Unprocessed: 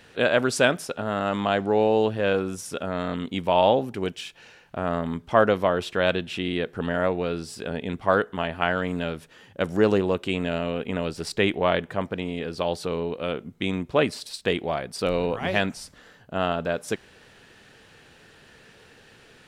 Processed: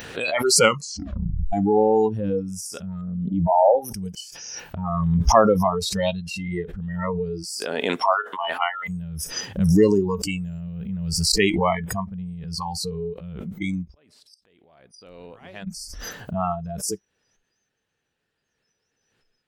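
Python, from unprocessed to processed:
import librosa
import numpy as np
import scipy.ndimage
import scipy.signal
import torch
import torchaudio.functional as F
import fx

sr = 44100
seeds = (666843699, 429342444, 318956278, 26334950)

y = fx.envelope_sharpen(x, sr, power=2.0, at=(3.01, 3.75))
y = fx.highpass(y, sr, hz=fx.line((7.42, 300.0), (8.88, 830.0)), slope=12, at=(7.42, 8.88), fade=0.02)
y = fx.quant_float(y, sr, bits=8, at=(10.02, 11.42))
y = fx.gate_flip(y, sr, shuts_db=-27.0, range_db=-30, at=(13.94, 15.67))
y = fx.edit(y, sr, fx.tape_stop(start_s=0.56, length_s=0.97), tone=tone)
y = fx.noise_reduce_blind(y, sr, reduce_db=30)
y = fx.pre_swell(y, sr, db_per_s=28.0)
y = y * 10.0 ** (3.5 / 20.0)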